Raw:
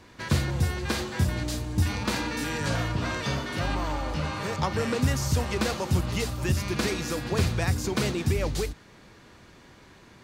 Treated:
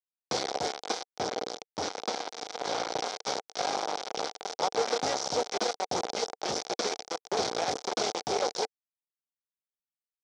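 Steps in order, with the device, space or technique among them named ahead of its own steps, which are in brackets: hand-held game console (bit crusher 4-bit; cabinet simulation 420–5900 Hz, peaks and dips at 460 Hz +7 dB, 760 Hz +9 dB, 1.1 kHz -4 dB, 1.8 kHz -9 dB, 2.7 kHz -10 dB, 5.7 kHz +6 dB); 1.16–2.92 s: treble shelf 8.3 kHz -10.5 dB; trim -2.5 dB

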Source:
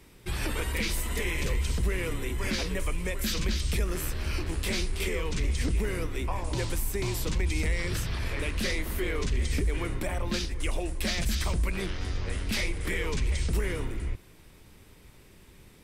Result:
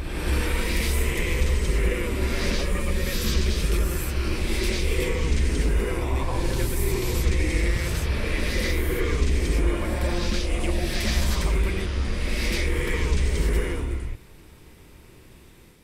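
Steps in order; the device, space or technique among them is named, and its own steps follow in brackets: reverse reverb (reverse; reverberation RT60 1.8 s, pre-delay 74 ms, DRR -2.5 dB; reverse)

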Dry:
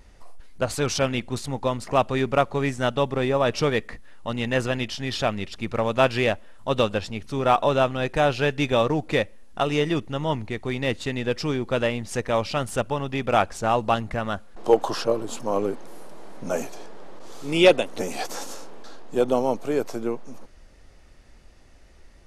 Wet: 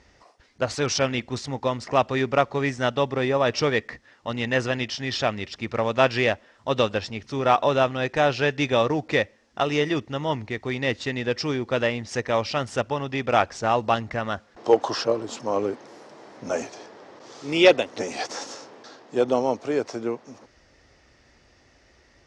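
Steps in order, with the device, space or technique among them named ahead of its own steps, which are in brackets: car door speaker (cabinet simulation 84–6900 Hz, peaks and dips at 180 Hz -7 dB, 1.9 kHz +4 dB, 5.4 kHz +5 dB)

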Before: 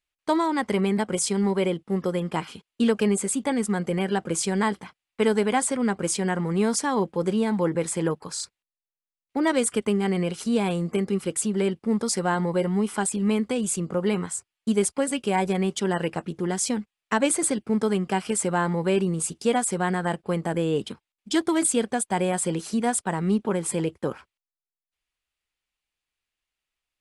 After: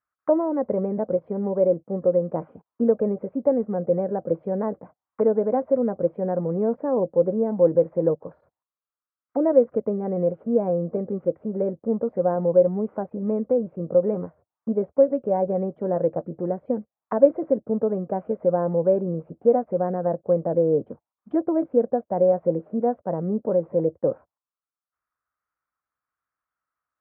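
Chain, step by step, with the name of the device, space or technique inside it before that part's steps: envelope filter bass rig (touch-sensitive low-pass 560–1300 Hz down, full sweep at -27.5 dBFS; cabinet simulation 88–2000 Hz, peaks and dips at 200 Hz -5 dB, 390 Hz -8 dB, 850 Hz -4 dB)

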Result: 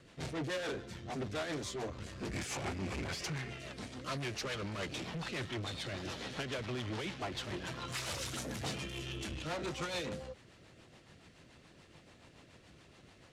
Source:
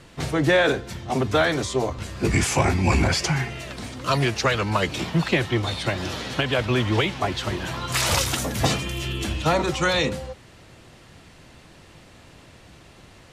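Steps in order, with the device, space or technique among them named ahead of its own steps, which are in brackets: overdriven rotary cabinet (valve stage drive 28 dB, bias 0.5; rotary cabinet horn 7 Hz); Bessel low-pass 9.3 kHz, order 2; bass shelf 70 Hz -9 dB; trim -5.5 dB

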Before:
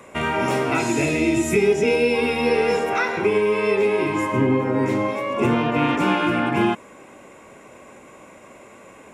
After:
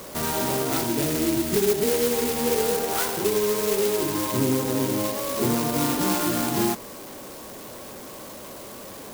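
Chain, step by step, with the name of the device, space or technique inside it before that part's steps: early CD player with a faulty converter (jump at every zero crossing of -31.5 dBFS; sampling jitter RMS 0.13 ms); trim -4.5 dB

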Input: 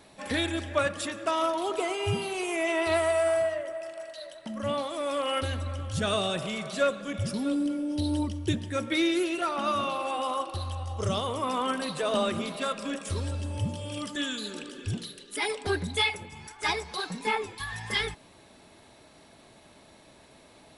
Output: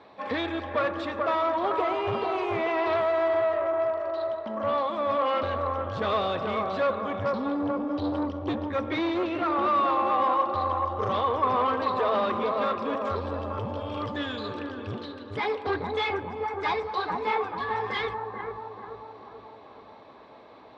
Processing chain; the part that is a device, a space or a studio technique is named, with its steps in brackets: analogue delay pedal into a guitar amplifier (bucket-brigade echo 436 ms, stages 4096, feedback 54%, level -5 dB; valve stage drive 26 dB, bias 0.4; cabinet simulation 100–3800 Hz, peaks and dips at 160 Hz -10 dB, 480 Hz +7 dB, 790 Hz +5 dB, 1.1 kHz +9 dB, 2.9 kHz -5 dB); trim +2 dB

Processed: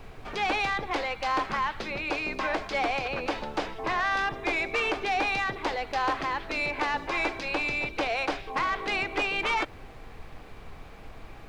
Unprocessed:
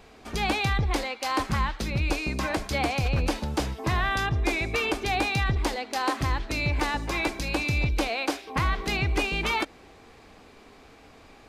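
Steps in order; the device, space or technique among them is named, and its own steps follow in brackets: aircraft cabin announcement (band-pass 410–3200 Hz; saturation -22.5 dBFS, distortion -17 dB; brown noise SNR 13 dB); trim +3 dB

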